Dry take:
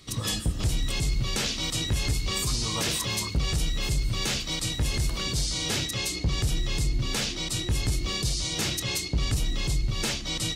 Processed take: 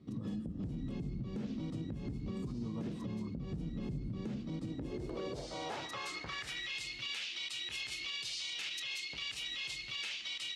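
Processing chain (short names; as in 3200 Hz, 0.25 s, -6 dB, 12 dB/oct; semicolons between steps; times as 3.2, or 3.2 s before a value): band-pass sweep 220 Hz -> 2700 Hz, 4.56–6.81; compressor 5:1, threshold -40 dBFS, peak gain reduction 9.5 dB; limiter -37.5 dBFS, peak gain reduction 7 dB; gain +6 dB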